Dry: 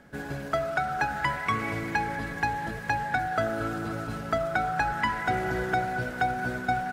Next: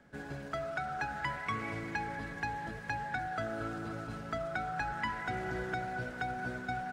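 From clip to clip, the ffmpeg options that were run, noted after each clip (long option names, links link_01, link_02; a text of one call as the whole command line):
ffmpeg -i in.wav -filter_complex "[0:a]equalizer=frequency=13000:width=1.4:gain=-11,acrossover=split=340|1200|5700[link_01][link_02][link_03][link_04];[link_02]alimiter=level_in=3dB:limit=-24dB:level=0:latency=1,volume=-3dB[link_05];[link_01][link_05][link_03][link_04]amix=inputs=4:normalize=0,volume=-7.5dB" out.wav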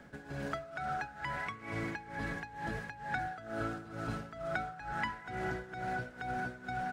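ffmpeg -i in.wav -af "acompressor=threshold=-40dB:ratio=4,tremolo=f=2.2:d=0.82,volume=7.5dB" out.wav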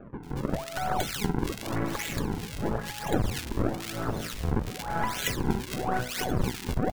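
ffmpeg -i in.wav -filter_complex "[0:a]acrusher=samples=42:mix=1:aa=0.000001:lfo=1:lforange=67.2:lforate=0.95,aeval=exprs='0.0841*(cos(1*acos(clip(val(0)/0.0841,-1,1)))-cos(1*PI/2))+0.0266*(cos(4*acos(clip(val(0)/0.0841,-1,1)))-cos(4*PI/2))':channel_layout=same,acrossover=split=1700[link_01][link_02];[link_02]adelay=230[link_03];[link_01][link_03]amix=inputs=2:normalize=0,volume=8.5dB" out.wav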